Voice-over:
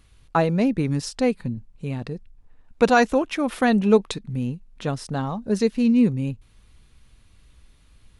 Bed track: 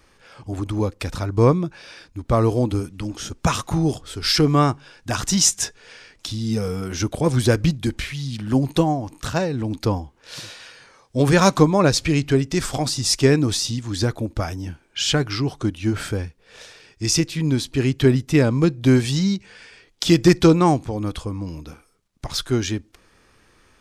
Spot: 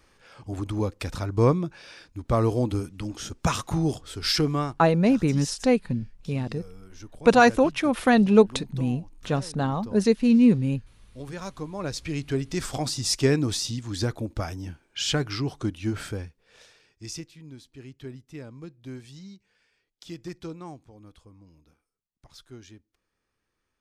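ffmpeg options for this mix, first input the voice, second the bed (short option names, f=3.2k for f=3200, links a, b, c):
-filter_complex "[0:a]adelay=4450,volume=0.5dB[a];[1:a]volume=11.5dB,afade=t=out:st=4.29:d=0.55:silence=0.141254,afade=t=in:st=11.61:d=1.2:silence=0.158489,afade=t=out:st=15.72:d=1.67:silence=0.11885[b];[a][b]amix=inputs=2:normalize=0"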